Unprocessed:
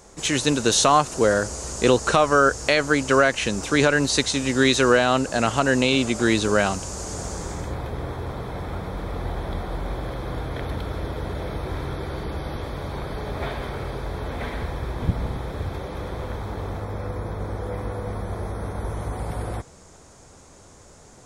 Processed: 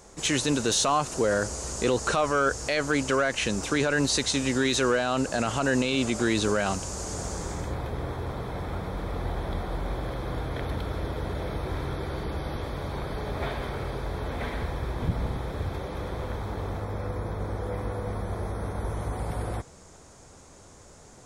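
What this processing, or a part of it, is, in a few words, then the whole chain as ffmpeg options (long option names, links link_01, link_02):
soft clipper into limiter: -af "asoftclip=type=tanh:threshold=-6dB,alimiter=limit=-13dB:level=0:latency=1:release=22,volume=-2dB"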